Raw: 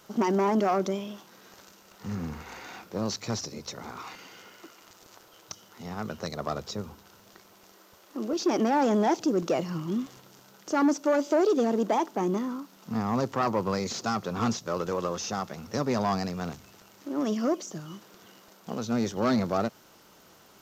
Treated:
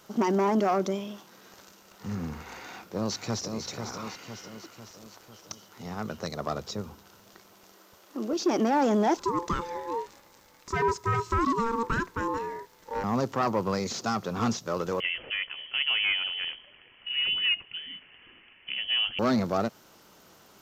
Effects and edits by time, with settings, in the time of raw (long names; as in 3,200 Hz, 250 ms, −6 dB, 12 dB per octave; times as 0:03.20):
0:02.61–0:03.58: delay throw 500 ms, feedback 55%, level −6.5 dB
0:09.17–0:13.04: ring modulation 690 Hz
0:15.00–0:19.19: voice inversion scrambler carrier 3,200 Hz